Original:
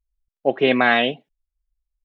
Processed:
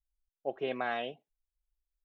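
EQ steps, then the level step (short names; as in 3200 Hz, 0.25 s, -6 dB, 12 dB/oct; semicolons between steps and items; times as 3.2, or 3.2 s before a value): ten-band EQ 125 Hz -8 dB, 250 Hz -11 dB, 500 Hz -4 dB, 1000 Hz -4 dB, 2000 Hz -11 dB, 4000 Hz -11 dB; -8.0 dB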